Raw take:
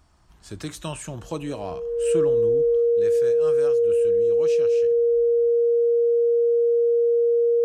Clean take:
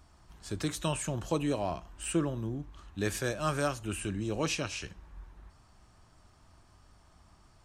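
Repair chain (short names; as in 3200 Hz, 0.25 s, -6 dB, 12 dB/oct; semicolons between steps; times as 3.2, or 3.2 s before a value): notch 470 Hz, Q 30; gain 0 dB, from 2.77 s +8 dB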